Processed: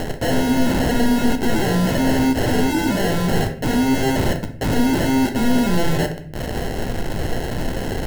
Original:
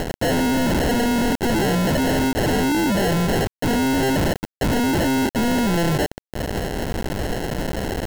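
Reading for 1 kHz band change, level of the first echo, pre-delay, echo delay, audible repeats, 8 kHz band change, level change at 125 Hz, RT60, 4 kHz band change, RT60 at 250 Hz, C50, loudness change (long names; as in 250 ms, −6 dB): −0.5 dB, no echo audible, 8 ms, no echo audible, no echo audible, −0.5 dB, +1.5 dB, 0.60 s, −0.5 dB, 0.95 s, 10.0 dB, +1.0 dB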